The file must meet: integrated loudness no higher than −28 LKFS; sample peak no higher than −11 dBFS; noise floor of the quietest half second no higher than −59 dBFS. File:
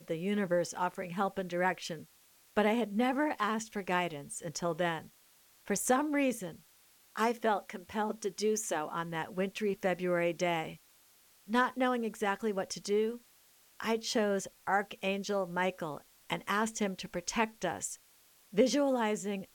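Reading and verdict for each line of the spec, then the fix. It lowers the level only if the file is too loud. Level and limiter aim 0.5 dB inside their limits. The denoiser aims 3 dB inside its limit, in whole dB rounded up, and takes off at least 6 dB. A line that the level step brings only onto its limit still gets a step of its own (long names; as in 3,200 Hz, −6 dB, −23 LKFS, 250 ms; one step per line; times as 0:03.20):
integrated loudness −33.0 LKFS: in spec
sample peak −15.0 dBFS: in spec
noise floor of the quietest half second −64 dBFS: in spec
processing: no processing needed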